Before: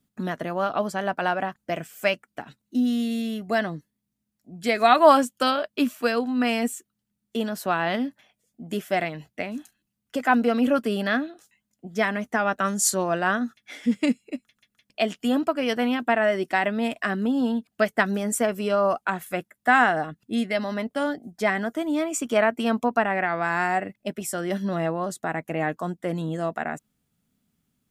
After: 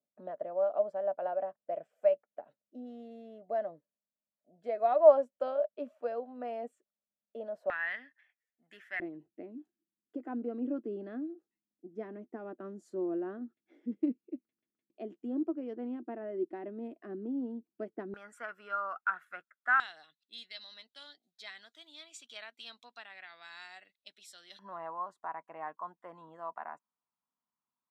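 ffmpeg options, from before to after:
-af "asetnsamples=n=441:p=0,asendcmd='7.7 bandpass f 1800;9 bandpass f 340;18.14 bandpass f 1400;19.8 bandpass f 3900;24.59 bandpass f 1000',bandpass=f=590:t=q:w=7.5:csg=0"

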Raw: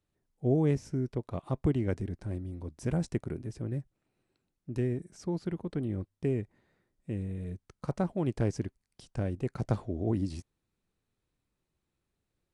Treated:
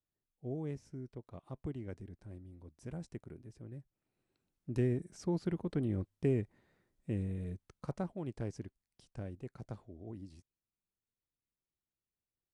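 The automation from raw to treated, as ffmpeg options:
-af "volume=0.891,afade=t=in:st=3.78:d=0.97:silence=0.237137,afade=t=out:st=7.2:d=1.01:silence=0.334965,afade=t=out:st=9.18:d=0.66:silence=0.473151"

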